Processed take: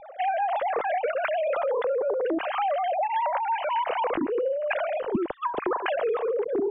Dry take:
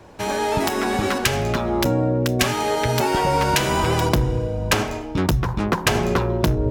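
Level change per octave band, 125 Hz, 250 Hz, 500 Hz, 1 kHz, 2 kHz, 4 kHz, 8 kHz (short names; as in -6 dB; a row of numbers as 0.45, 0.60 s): under -30 dB, -11.0 dB, -2.5 dB, -2.5 dB, -8.0 dB, -16.5 dB, under -40 dB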